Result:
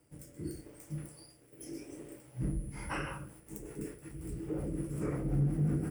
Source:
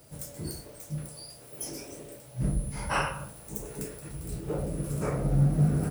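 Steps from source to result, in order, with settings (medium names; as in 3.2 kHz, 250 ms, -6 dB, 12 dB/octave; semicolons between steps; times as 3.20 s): rotary cabinet horn 0.8 Hz, later 5.5 Hz, at 2.41 s; waveshaping leveller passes 1; graphic EQ with 31 bands 315 Hz +10 dB, 630 Hz -6 dB, 2 kHz +4 dB, 4 kHz -11 dB, 6.3 kHz -5 dB, 12.5 kHz -6 dB; trim -8.5 dB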